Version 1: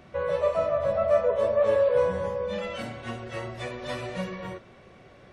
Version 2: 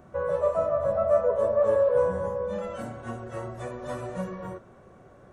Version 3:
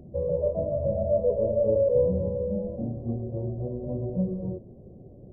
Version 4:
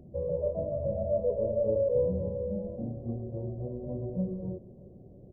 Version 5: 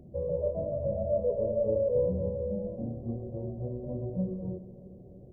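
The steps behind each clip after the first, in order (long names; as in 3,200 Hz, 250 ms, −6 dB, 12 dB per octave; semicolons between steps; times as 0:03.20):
flat-topped bell 3,200 Hz −13 dB
Gaussian smoothing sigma 19 samples; level +9 dB
repeating echo 309 ms, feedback 55%, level −22.5 dB; level −4.5 dB
convolution reverb RT60 3.6 s, pre-delay 83 ms, DRR 15.5 dB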